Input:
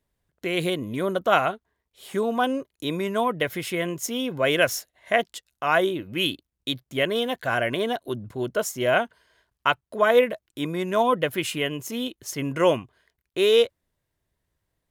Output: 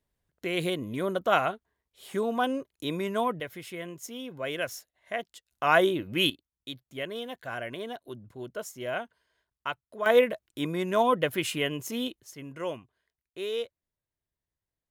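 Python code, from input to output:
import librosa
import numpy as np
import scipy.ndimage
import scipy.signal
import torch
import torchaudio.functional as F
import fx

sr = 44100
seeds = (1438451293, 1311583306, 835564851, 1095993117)

y = fx.gain(x, sr, db=fx.steps((0.0, -4.0), (3.4, -11.5), (5.51, -0.5), (6.3, -11.5), (10.06, -2.5), (12.2, -14.0)))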